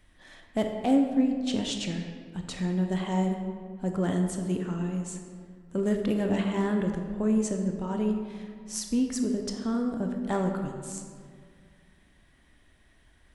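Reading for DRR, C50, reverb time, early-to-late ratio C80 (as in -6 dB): 3.0 dB, 5.0 dB, 2.0 s, 6.0 dB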